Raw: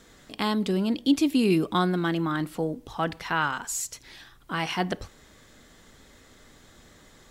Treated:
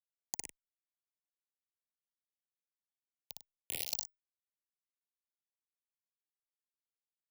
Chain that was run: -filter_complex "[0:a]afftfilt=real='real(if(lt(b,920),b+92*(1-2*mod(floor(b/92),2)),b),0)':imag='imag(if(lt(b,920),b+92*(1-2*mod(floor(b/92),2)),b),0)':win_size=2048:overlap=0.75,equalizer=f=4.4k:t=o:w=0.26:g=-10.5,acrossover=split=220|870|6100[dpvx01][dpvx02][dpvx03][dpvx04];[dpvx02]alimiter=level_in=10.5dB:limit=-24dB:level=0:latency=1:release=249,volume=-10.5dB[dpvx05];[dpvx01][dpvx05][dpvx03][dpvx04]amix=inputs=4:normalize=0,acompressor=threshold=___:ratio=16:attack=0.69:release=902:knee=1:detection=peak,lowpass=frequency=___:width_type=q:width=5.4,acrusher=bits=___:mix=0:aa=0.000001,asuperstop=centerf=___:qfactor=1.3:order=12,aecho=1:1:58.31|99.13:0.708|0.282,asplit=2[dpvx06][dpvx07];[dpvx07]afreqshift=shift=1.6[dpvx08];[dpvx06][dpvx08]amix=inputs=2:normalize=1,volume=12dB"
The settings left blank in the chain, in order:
-37dB, 7.8k, 4, 1300